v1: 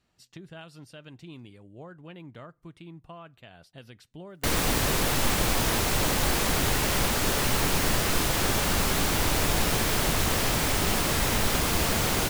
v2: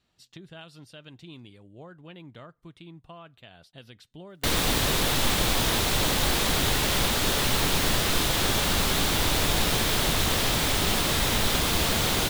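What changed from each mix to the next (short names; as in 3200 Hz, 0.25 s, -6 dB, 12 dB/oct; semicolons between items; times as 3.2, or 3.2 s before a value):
speech: send -10.5 dB; master: add bell 3600 Hz +6.5 dB 0.58 oct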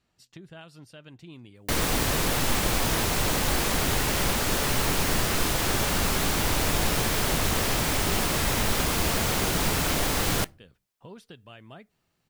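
background: entry -2.75 s; master: add bell 3600 Hz -6.5 dB 0.58 oct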